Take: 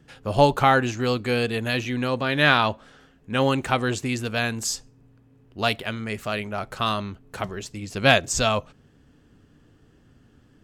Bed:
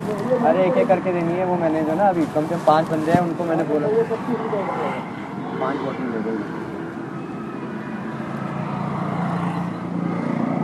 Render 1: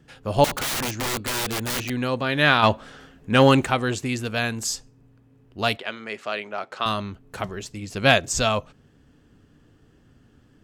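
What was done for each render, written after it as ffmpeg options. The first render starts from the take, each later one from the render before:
ffmpeg -i in.wav -filter_complex "[0:a]asettb=1/sr,asplit=3[link_01][link_02][link_03];[link_01]atrim=end=0.444[link_04];[link_02]atrim=start=0.44:end=1.9,asetpts=PTS-STARTPTS,afade=type=in:duration=0.004:curve=qsin,afade=type=out:start_time=1.456:duration=0.004:curve=qsin,aeval=exprs='(mod(11.9*val(0)+1,2)-1)/11.9':channel_layout=same[link_05];[link_03]atrim=start=1.896[link_06];[link_04][link_05]acrossfade=duration=0.004:curve1=hsin:curve2=qsin[link_07];[link_07][link_06]acrossfade=duration=0.004:curve1=qsin:curve2=hsin,asplit=3[link_08][link_09][link_10];[link_08]afade=type=out:start_time=2.62:duration=0.02[link_11];[link_09]acontrast=80,afade=type=in:start_time=2.62:duration=0.02,afade=type=out:start_time=3.64:duration=0.02[link_12];[link_10]afade=type=in:start_time=3.64:duration=0.02[link_13];[link_11][link_12][link_13]amix=inputs=3:normalize=0,asettb=1/sr,asplit=3[link_14][link_15][link_16];[link_14]atrim=end=5.774[link_17];[link_15]atrim=start=5.77:end=6.86,asetpts=PTS-STARTPTS,afade=type=in:duration=0.004:curve=qsin,afade=type=out:start_time=1.086:duration=0.004:curve=qsin,highpass=350,lowpass=5500[link_18];[link_16]atrim=start=6.856[link_19];[link_17][link_18]acrossfade=duration=0.004:curve1=hsin:curve2=qsin[link_20];[link_20][link_19]acrossfade=duration=0.004:curve1=qsin:curve2=hsin" out.wav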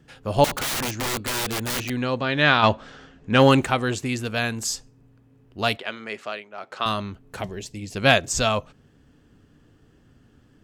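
ffmpeg -i in.wav -filter_complex "[0:a]asettb=1/sr,asplit=3[link_01][link_02][link_03];[link_01]atrim=end=2.024[link_04];[link_02]atrim=start=2.02:end=3.39,asetpts=PTS-STARTPTS,afade=type=in:duration=0.004:curve=qsin,afade=type=out:start_time=1.366:duration=0.004:curve=qsin,lowpass=frequency=7200:width=0.5412,lowpass=frequency=7200:width=1.3066[link_05];[link_03]atrim=start=3.386[link_06];[link_04][link_05]acrossfade=duration=0.004:curve1=hsin:curve2=qsin[link_07];[link_07][link_06]acrossfade=duration=0.004:curve1=qsin:curve2=hsin,asettb=1/sr,asplit=3[link_08][link_09][link_10];[link_08]atrim=end=7.414[link_11];[link_09]atrim=start=7.41:end=7.96,asetpts=PTS-STARTPTS,afade=type=in:duration=0.004:curve=qsin,afade=type=out:start_time=0.546:duration=0.004:curve=qsin,equalizer=frequency=1300:width=2.7:gain=-12.5[link_12];[link_10]atrim=start=7.956[link_13];[link_11][link_12]acrossfade=duration=0.004:curve1=hsin:curve2=qsin[link_14];[link_14][link_13]acrossfade=duration=0.004:curve1=qsin:curve2=hsin,asplit=3[link_15][link_16][link_17];[link_15]atrim=end=6.46,asetpts=PTS-STARTPTS,afade=type=out:start_time=6.21:duration=0.25:silence=0.281838[link_18];[link_16]atrim=start=6.46:end=6.51,asetpts=PTS-STARTPTS,volume=-11dB[link_19];[link_17]atrim=start=6.51,asetpts=PTS-STARTPTS,afade=type=in:duration=0.25:silence=0.281838[link_20];[link_18][link_19][link_20]concat=n=3:v=0:a=1" out.wav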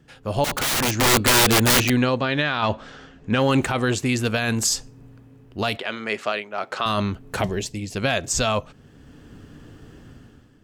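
ffmpeg -i in.wav -af "dynaudnorm=framelen=140:gausssize=7:maxgain=12dB,alimiter=limit=-11dB:level=0:latency=1:release=33" out.wav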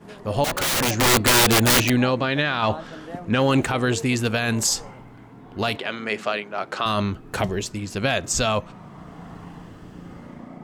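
ffmpeg -i in.wav -i bed.wav -filter_complex "[1:a]volume=-18dB[link_01];[0:a][link_01]amix=inputs=2:normalize=0" out.wav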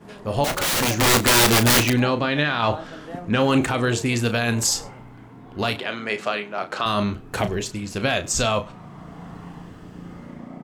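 ffmpeg -i in.wav -filter_complex "[0:a]asplit=2[link_01][link_02];[link_02]adelay=34,volume=-9.5dB[link_03];[link_01][link_03]amix=inputs=2:normalize=0,aecho=1:1:98:0.0668" out.wav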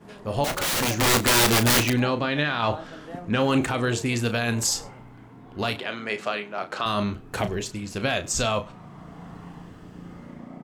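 ffmpeg -i in.wav -af "volume=-3dB" out.wav

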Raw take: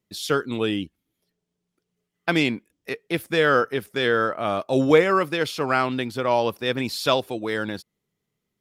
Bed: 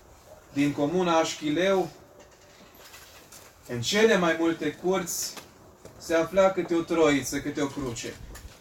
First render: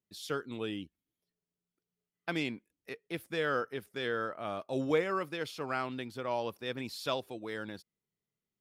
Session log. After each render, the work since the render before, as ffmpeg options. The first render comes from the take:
ffmpeg -i in.wav -af "volume=-13dB" out.wav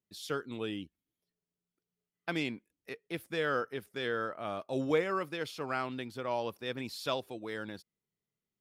ffmpeg -i in.wav -af anull out.wav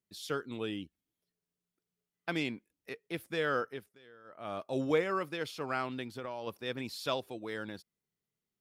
ffmpeg -i in.wav -filter_complex "[0:a]asplit=3[link_01][link_02][link_03];[link_01]afade=type=out:start_time=6.06:duration=0.02[link_04];[link_02]acompressor=threshold=-35dB:ratio=10:attack=3.2:release=140:knee=1:detection=peak,afade=type=in:start_time=6.06:duration=0.02,afade=type=out:start_time=6.46:duration=0.02[link_05];[link_03]afade=type=in:start_time=6.46:duration=0.02[link_06];[link_04][link_05][link_06]amix=inputs=3:normalize=0,asplit=3[link_07][link_08][link_09];[link_07]atrim=end=3.98,asetpts=PTS-STARTPTS,afade=type=out:start_time=3.64:duration=0.34:silence=0.0707946[link_10];[link_08]atrim=start=3.98:end=4.24,asetpts=PTS-STARTPTS,volume=-23dB[link_11];[link_09]atrim=start=4.24,asetpts=PTS-STARTPTS,afade=type=in:duration=0.34:silence=0.0707946[link_12];[link_10][link_11][link_12]concat=n=3:v=0:a=1" out.wav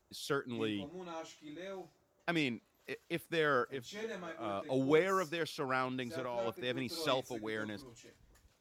ffmpeg -i in.wav -i bed.wav -filter_complex "[1:a]volume=-22dB[link_01];[0:a][link_01]amix=inputs=2:normalize=0" out.wav

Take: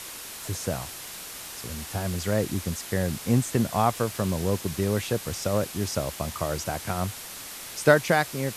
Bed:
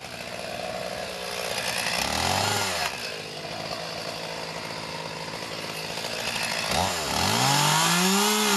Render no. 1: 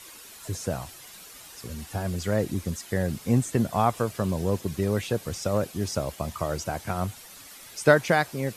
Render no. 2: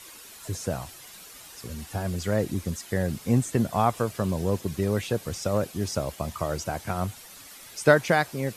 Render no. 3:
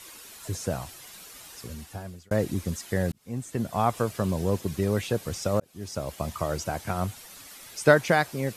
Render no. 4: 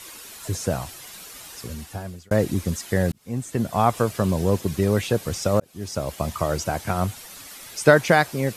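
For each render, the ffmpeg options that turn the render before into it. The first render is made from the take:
ffmpeg -i in.wav -af "afftdn=noise_reduction=10:noise_floor=-40" out.wav
ffmpeg -i in.wav -af anull out.wav
ffmpeg -i in.wav -filter_complex "[0:a]asplit=4[link_01][link_02][link_03][link_04];[link_01]atrim=end=2.31,asetpts=PTS-STARTPTS,afade=type=out:start_time=1.56:duration=0.75[link_05];[link_02]atrim=start=2.31:end=3.12,asetpts=PTS-STARTPTS,afade=type=in:duration=0.004:curve=hsin,afade=type=out:start_time=0.806:duration=0.004:curve=hsin[link_06];[link_03]atrim=start=3.12:end=5.6,asetpts=PTS-STARTPTS,afade=type=in:duration=0.86,afade=type=out:start_time=2.476:duration=0.004:curve=hsin[link_07];[link_04]atrim=start=5.6,asetpts=PTS-STARTPTS,afade=type=in:duration=0.62[link_08];[link_05][link_06][link_07][link_08]concat=n=4:v=0:a=1" out.wav
ffmpeg -i in.wav -af "volume=5dB,alimiter=limit=-2dB:level=0:latency=1" out.wav

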